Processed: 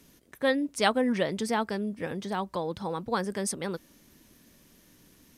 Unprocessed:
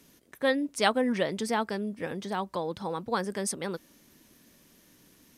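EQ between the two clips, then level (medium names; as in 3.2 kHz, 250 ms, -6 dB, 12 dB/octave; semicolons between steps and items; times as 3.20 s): bass shelf 100 Hz +8 dB; 0.0 dB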